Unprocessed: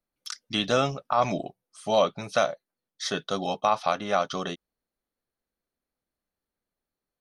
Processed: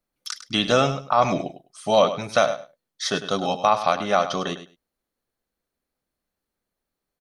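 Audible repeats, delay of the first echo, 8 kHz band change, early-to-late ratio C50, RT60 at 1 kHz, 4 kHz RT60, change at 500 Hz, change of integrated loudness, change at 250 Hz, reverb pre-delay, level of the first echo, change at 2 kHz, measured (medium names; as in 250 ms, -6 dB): 2, 102 ms, +5.0 dB, no reverb, no reverb, no reverb, +5.0 dB, +5.0 dB, +5.0 dB, no reverb, -12.0 dB, +4.5 dB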